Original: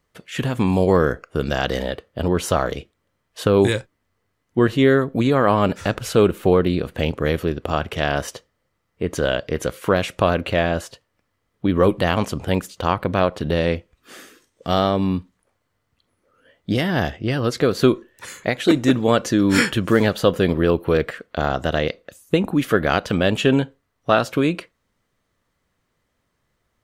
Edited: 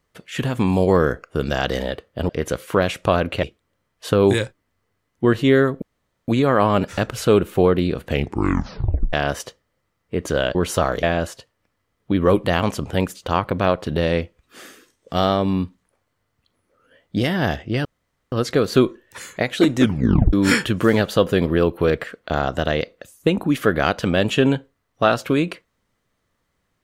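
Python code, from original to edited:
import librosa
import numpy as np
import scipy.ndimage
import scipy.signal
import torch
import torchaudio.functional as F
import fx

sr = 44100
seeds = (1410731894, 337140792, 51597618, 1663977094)

y = fx.edit(x, sr, fx.swap(start_s=2.29, length_s=0.48, other_s=9.43, other_length_s=1.14),
    fx.insert_room_tone(at_s=5.16, length_s=0.46),
    fx.tape_stop(start_s=6.97, length_s=1.04),
    fx.insert_room_tone(at_s=17.39, length_s=0.47),
    fx.tape_stop(start_s=18.87, length_s=0.53), tone=tone)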